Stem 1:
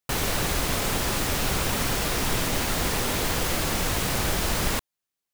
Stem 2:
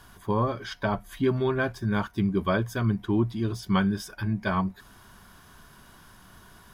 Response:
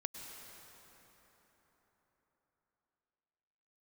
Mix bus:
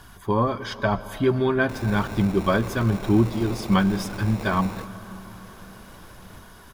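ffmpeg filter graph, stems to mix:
-filter_complex "[0:a]acrusher=samples=28:mix=1:aa=0.000001,adelay=1600,volume=-11dB,asplit=2[link_01][link_02];[link_02]volume=-13dB[link_03];[1:a]aphaser=in_gain=1:out_gain=1:delay=4.8:decay=0.26:speed=0.95:type=triangular,volume=1dB,asplit=3[link_04][link_05][link_06];[link_05]volume=-6dB[link_07];[link_06]apad=whole_len=305694[link_08];[link_01][link_08]sidechaingate=range=-33dB:threshold=-43dB:ratio=16:detection=peak[link_09];[2:a]atrim=start_sample=2205[link_10];[link_03][link_07]amix=inputs=2:normalize=0[link_11];[link_11][link_10]afir=irnorm=-1:irlink=0[link_12];[link_09][link_04][link_12]amix=inputs=3:normalize=0"

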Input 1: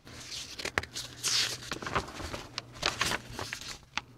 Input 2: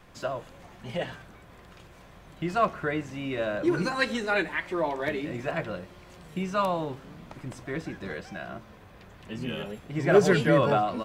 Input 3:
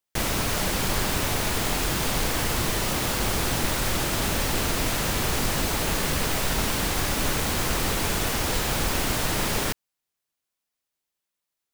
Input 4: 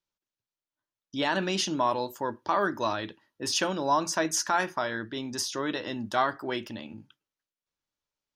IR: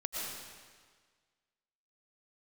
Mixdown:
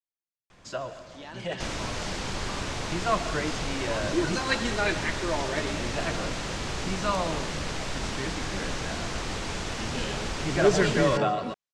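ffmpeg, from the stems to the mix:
-filter_complex "[0:a]adelay=750,volume=-18.5dB[link_01];[1:a]aemphasis=mode=production:type=50fm,adelay=500,volume=-3.5dB,asplit=2[link_02][link_03];[link_03]volume=-11.5dB[link_04];[2:a]adelay=1450,volume=-6.5dB[link_05];[3:a]volume=-16.5dB[link_06];[4:a]atrim=start_sample=2205[link_07];[link_04][link_07]afir=irnorm=-1:irlink=0[link_08];[link_01][link_02][link_05][link_06][link_08]amix=inputs=5:normalize=0,lowpass=frequency=7300:width=0.5412,lowpass=frequency=7300:width=1.3066"

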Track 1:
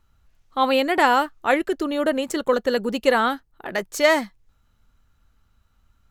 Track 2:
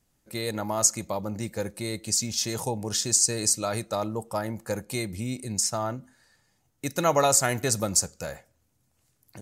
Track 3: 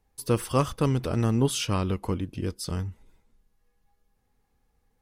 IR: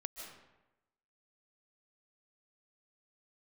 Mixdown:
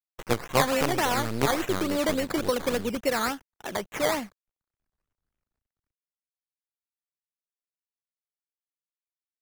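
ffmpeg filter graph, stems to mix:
-filter_complex "[0:a]dynaudnorm=framelen=130:gausssize=7:maxgain=10.5dB,acrusher=bits=7:mix=0:aa=0.000001,acrossover=split=180|3000[link_01][link_02][link_03];[link_02]acompressor=threshold=-17dB:ratio=2.5[link_04];[link_01][link_04][link_03]amix=inputs=3:normalize=0,volume=-7.5dB[link_05];[2:a]highpass=frequency=200:poles=1,acrusher=bits=4:dc=4:mix=0:aa=0.000001,volume=0dB[link_06];[link_05][link_06]amix=inputs=2:normalize=0,agate=range=-30dB:threshold=-48dB:ratio=16:detection=peak,acrusher=samples=13:mix=1:aa=0.000001:lfo=1:lforange=7.8:lforate=3.5"

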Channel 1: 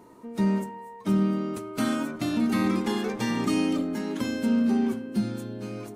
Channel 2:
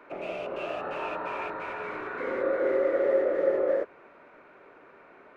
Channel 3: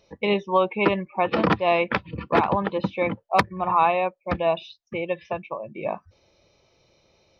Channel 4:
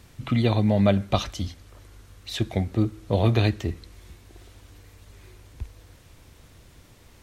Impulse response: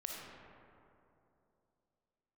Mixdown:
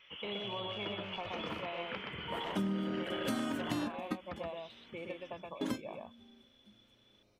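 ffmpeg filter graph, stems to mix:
-filter_complex "[0:a]adelay=1500,volume=-1dB[link_01];[1:a]aeval=exprs='0.211*(cos(1*acos(clip(val(0)/0.211,-1,1)))-cos(1*PI/2))+0.0841*(cos(7*acos(clip(val(0)/0.211,-1,1)))-cos(7*PI/2))':channel_layout=same,volume=-14.5dB,asplit=2[link_02][link_03];[link_03]volume=-4dB[link_04];[2:a]acompressor=threshold=-25dB:ratio=6,volume=-14.5dB,asplit=2[link_05][link_06];[link_06]volume=-3dB[link_07];[3:a]equalizer=frequency=260:width_type=o:width=0.94:gain=-8.5,volume=-16dB,asplit=3[link_08][link_09][link_10];[link_09]volume=-12.5dB[link_11];[link_10]apad=whole_len=328866[link_12];[link_01][link_12]sidechaingate=range=-36dB:threshold=-58dB:ratio=16:detection=peak[link_13];[link_02][link_08]amix=inputs=2:normalize=0,lowpass=frequency=3000:width_type=q:width=0.5098,lowpass=frequency=3000:width_type=q:width=0.6013,lowpass=frequency=3000:width_type=q:width=0.9,lowpass=frequency=3000:width_type=q:width=2.563,afreqshift=-3500,acompressor=threshold=-42dB:ratio=6,volume=0dB[link_14];[link_04][link_07][link_11]amix=inputs=3:normalize=0,aecho=0:1:123:1[link_15];[link_13][link_05][link_14][link_15]amix=inputs=4:normalize=0,acompressor=threshold=-32dB:ratio=6"

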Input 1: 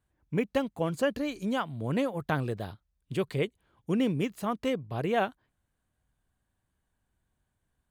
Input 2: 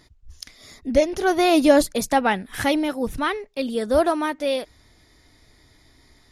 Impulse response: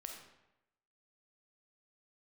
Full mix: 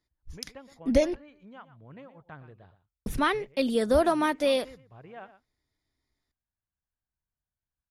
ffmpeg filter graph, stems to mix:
-filter_complex "[0:a]lowpass=2100,equalizer=frequency=310:width=0.52:gain=-7,volume=-13.5dB,asplit=2[link_01][link_02];[link_02]volume=-13.5dB[link_03];[1:a]agate=range=-27dB:threshold=-42dB:ratio=16:detection=peak,acrossover=split=150[link_04][link_05];[link_05]acompressor=threshold=-20dB:ratio=2.5[link_06];[link_04][link_06]amix=inputs=2:normalize=0,volume=0dB,asplit=3[link_07][link_08][link_09];[link_07]atrim=end=1.16,asetpts=PTS-STARTPTS,afade=type=out:start_time=1.156:duration=0.004:curve=hsin[link_10];[link_08]atrim=start=1.16:end=3.06,asetpts=PTS-STARTPTS,volume=0[link_11];[link_09]atrim=start=3.06,asetpts=PTS-STARTPTS,afade=type=in:duration=0.004:curve=hsin[link_12];[link_10][link_11][link_12]concat=n=3:v=0:a=1[link_13];[link_03]aecho=0:1:118:1[link_14];[link_01][link_13][link_14]amix=inputs=3:normalize=0"

